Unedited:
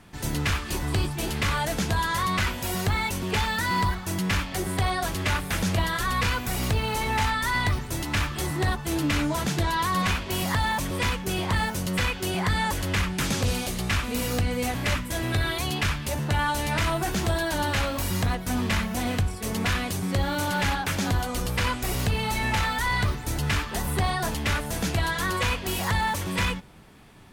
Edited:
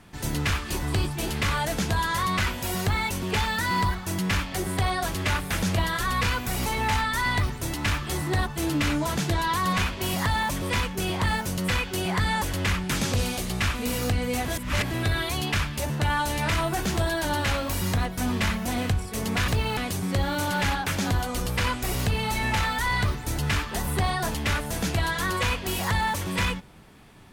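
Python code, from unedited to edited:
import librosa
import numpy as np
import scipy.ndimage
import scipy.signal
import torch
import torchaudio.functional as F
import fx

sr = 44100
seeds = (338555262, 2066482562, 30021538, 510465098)

y = fx.edit(x, sr, fx.move(start_s=6.66, length_s=0.29, to_s=19.77),
    fx.reverse_span(start_s=14.77, length_s=0.43), tone=tone)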